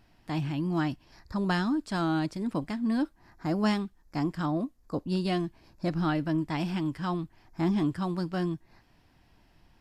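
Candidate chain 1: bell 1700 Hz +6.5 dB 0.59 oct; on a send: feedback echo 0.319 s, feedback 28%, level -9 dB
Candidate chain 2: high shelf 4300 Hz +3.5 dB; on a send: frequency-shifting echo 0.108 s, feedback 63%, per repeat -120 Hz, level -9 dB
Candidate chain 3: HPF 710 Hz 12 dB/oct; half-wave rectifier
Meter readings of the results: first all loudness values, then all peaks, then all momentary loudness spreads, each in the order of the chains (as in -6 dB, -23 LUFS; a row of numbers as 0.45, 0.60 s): -30.0, -30.0, -44.0 LUFS; -13.0, -13.5, -19.0 dBFS; 8, 8, 11 LU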